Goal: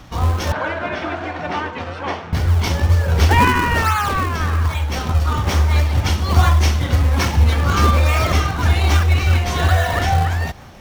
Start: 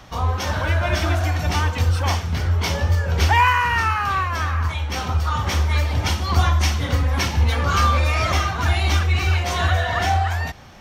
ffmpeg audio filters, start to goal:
-filter_complex "[0:a]asplit=2[a][b];[b]acrusher=samples=40:mix=1:aa=0.000001:lfo=1:lforange=64:lforate=1.2,volume=-3.5dB[c];[a][c]amix=inputs=2:normalize=0,asettb=1/sr,asplit=3[d][e][f];[d]atrim=end=0.524[g];[e]atrim=start=0.52:end=2.33,asetpts=PTS-STARTPTS,afade=t=in:d=0.004:c=qsin,afade=t=out:st=1.806:d=0.004:c=qsin,highpass=260,lowpass=2.6k[h];[f]atrim=start=2.326[i];[g][h]acrossfade=d=0.004:c1=hsin:c2=qsin[j];[j][i]acrossfade=d=0.004:c1=qsin:c2=hsin"

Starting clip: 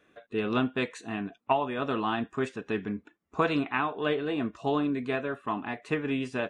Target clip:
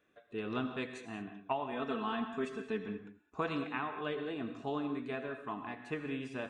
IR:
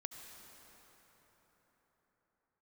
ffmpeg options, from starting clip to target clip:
-filter_complex "[0:a]asettb=1/sr,asplit=3[a][b][c];[a]atrim=end=1.724[d];[b]atrim=start=1.72:end=2.88,asetpts=PTS-STARTPTS,afade=t=in:d=0.004:c=qsin,afade=t=out:st=1.156:d=0.004:c=qsin,aecho=1:1:4.5:0.81,atrim=end_sample=51156[e];[c]atrim=start=2.876[f];[d][e]acrossfade=d=0.004:c1=hsin:c2=qsin[g];[g][f]acrossfade=d=0.004:c1=qsin:c2=hsin[h];[1:a]atrim=start_sample=2205,afade=t=out:st=0.27:d=0.01,atrim=end_sample=12348[i];[h][i]afir=irnorm=-1:irlink=0,volume=-5dB"

